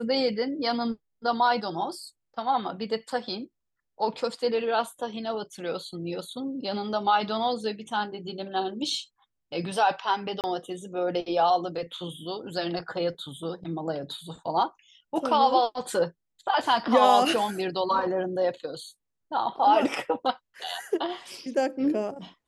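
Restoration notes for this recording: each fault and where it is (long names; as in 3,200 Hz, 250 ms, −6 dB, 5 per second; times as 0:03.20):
0:10.41–0:10.44: drop-out 28 ms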